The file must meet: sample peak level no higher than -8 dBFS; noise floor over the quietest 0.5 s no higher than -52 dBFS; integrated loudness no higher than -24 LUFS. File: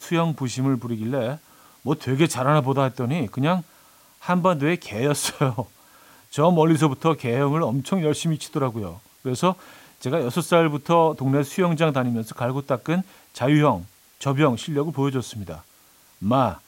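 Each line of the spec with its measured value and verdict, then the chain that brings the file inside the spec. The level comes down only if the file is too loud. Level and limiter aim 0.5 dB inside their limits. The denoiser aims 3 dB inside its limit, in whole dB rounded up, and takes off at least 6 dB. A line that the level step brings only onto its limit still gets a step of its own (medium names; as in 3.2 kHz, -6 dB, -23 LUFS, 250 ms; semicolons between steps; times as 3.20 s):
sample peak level -5.5 dBFS: fail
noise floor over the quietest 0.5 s -55 dBFS: pass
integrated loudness -22.5 LUFS: fail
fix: trim -2 dB; peak limiter -8.5 dBFS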